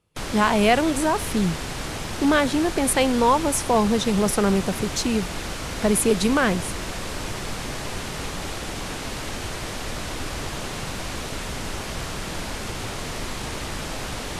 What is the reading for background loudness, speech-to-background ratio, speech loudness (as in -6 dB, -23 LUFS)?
-30.5 LUFS, 9.0 dB, -21.5 LUFS